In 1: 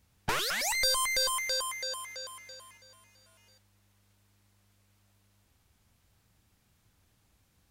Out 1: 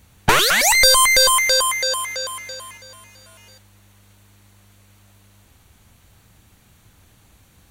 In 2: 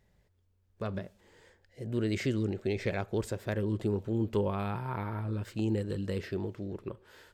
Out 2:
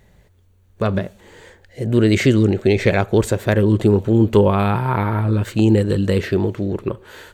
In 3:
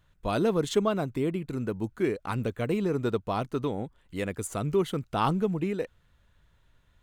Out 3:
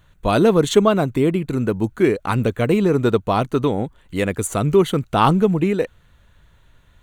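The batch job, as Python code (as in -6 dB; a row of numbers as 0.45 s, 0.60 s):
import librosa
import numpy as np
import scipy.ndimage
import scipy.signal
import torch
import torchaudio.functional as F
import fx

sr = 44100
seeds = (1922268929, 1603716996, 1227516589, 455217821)

y = fx.notch(x, sr, hz=5100.0, q=7.0)
y = y * 10.0 ** (-2 / 20.0) / np.max(np.abs(y))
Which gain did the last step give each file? +16.0 dB, +16.0 dB, +11.0 dB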